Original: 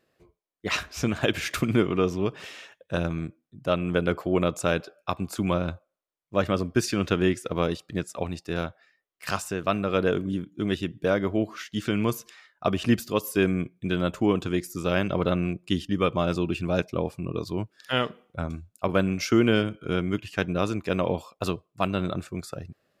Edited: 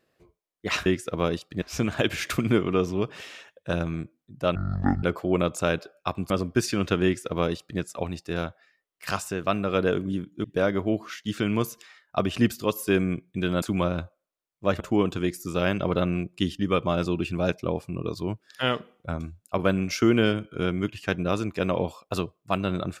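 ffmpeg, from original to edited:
-filter_complex "[0:a]asplit=9[a][b][c][d][e][f][g][h][i];[a]atrim=end=0.862[j];[b]atrim=start=7.238:end=8.002[k];[c]atrim=start=0.858:end=3.794[l];[d]atrim=start=3.79:end=4.05,asetpts=PTS-STARTPTS,asetrate=23814,aresample=44100,atrim=end_sample=21233,asetpts=PTS-STARTPTS[m];[e]atrim=start=4.046:end=5.322[n];[f]atrim=start=6.498:end=10.642[o];[g]atrim=start=10.918:end=14.102[p];[h]atrim=start=5.318:end=6.502[q];[i]atrim=start=14.098[r];[j][k]acrossfade=d=0.004:c1=hsin:c2=hsin[s];[s][l]acrossfade=d=0.004:c1=hsin:c2=hsin[t];[t][m]acrossfade=d=0.004:c1=hsin:c2=hsin[u];[u][n]acrossfade=d=0.004:c1=hsin:c2=hsin[v];[v][o]acrossfade=d=0.004:c1=hsin:c2=hsin[w];[w][p]acrossfade=d=0.004:c1=hsin:c2=hsin[x];[x][q]acrossfade=d=0.004:c1=hsin:c2=hsin[y];[y][r]acrossfade=d=0.004:c1=hsin:c2=hsin"

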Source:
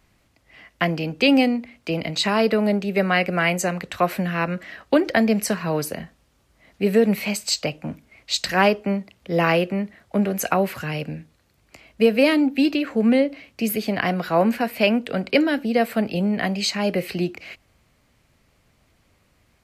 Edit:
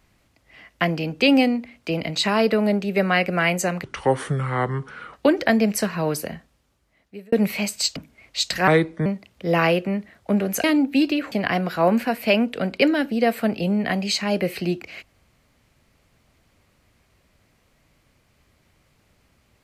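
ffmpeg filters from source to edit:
-filter_complex "[0:a]asplit=9[a][b][c][d][e][f][g][h][i];[a]atrim=end=3.844[j];[b]atrim=start=3.84:end=4.81,asetpts=PTS-STARTPTS,asetrate=33075,aresample=44100[k];[c]atrim=start=4.806:end=7,asetpts=PTS-STARTPTS,afade=t=out:st=1.114:d=1.08[l];[d]atrim=start=7:end=7.642,asetpts=PTS-STARTPTS,afade=t=in:d=0.004:c=hsin[m];[e]atrim=start=7.898:end=8.614[n];[f]atrim=start=8.61:end=8.91,asetpts=PTS-STARTPTS,asetrate=34398,aresample=44100[o];[g]atrim=start=8.906:end=10.492[p];[h]atrim=start=12.268:end=12.952[q];[i]atrim=start=13.848[r];[j][k]acrossfade=d=0.004:c1=hsin:c2=hsin[s];[l][m]concat=n=2:v=0:a=1[t];[s][t]acrossfade=d=0.004:c1=hsin:c2=hsin[u];[u][n]acrossfade=d=0.004:c1=hsin:c2=hsin[v];[v][o]acrossfade=d=0.004:c1=hsin:c2=hsin[w];[w][p]acrossfade=d=0.004:c1=hsin:c2=hsin[x];[x][q]acrossfade=d=0.004:c1=hsin:c2=hsin[y];[y][r]acrossfade=d=0.004:c1=hsin:c2=hsin"

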